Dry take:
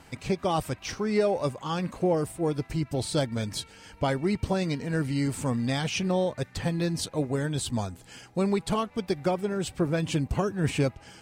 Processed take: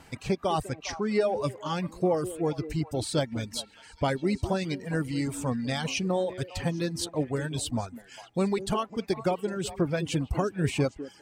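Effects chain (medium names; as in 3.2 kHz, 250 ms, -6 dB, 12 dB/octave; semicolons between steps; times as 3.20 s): reverb removal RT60 1.3 s; 0.61–1.41 s: low-pass 9.6 kHz 12 dB/octave; on a send: repeats whose band climbs or falls 202 ms, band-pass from 330 Hz, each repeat 1.4 oct, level -9.5 dB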